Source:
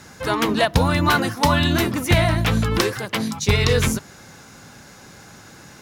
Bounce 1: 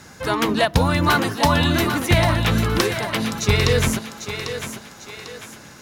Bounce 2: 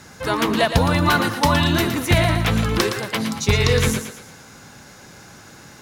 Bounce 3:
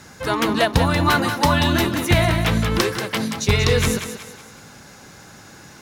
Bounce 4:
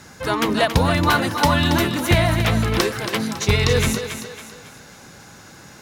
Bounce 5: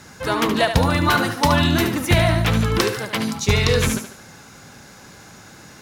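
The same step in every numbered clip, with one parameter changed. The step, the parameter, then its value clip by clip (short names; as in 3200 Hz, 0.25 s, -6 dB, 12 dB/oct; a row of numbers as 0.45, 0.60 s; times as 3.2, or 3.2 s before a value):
thinning echo, time: 797, 115, 185, 277, 73 ms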